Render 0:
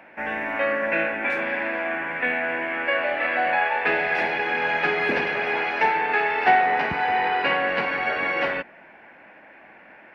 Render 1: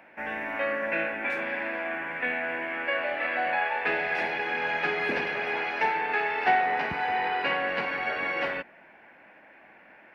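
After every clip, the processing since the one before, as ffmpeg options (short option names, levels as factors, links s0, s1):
-af "highshelf=f=5000:g=4.5,volume=0.531"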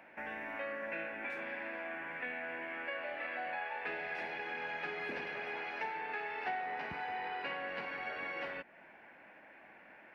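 -af "acompressor=threshold=0.01:ratio=2,volume=0.631"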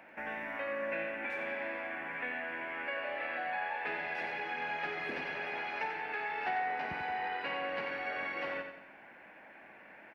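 -af "aecho=1:1:90|180|270|360|450:0.447|0.197|0.0865|0.0381|0.0167,volume=1.26"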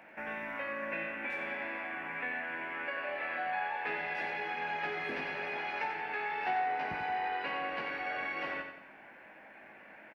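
-filter_complex "[0:a]asplit=2[s0][s1];[s1]adelay=19,volume=0.447[s2];[s0][s2]amix=inputs=2:normalize=0"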